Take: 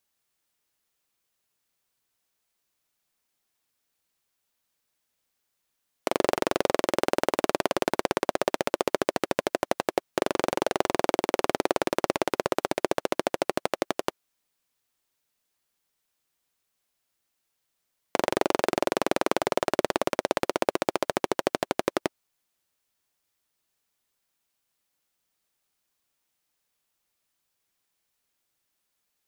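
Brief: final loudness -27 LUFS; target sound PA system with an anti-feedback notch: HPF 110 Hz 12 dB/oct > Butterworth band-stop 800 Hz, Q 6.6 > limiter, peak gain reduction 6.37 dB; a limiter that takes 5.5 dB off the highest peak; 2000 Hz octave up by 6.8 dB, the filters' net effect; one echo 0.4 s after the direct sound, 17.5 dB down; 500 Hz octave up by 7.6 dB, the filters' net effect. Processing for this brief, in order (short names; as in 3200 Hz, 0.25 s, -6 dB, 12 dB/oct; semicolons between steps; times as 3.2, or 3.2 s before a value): bell 500 Hz +9 dB; bell 2000 Hz +8 dB; limiter -5.5 dBFS; HPF 110 Hz 12 dB/oct; Butterworth band-stop 800 Hz, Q 6.6; echo 0.4 s -17.5 dB; gain +2.5 dB; limiter -9.5 dBFS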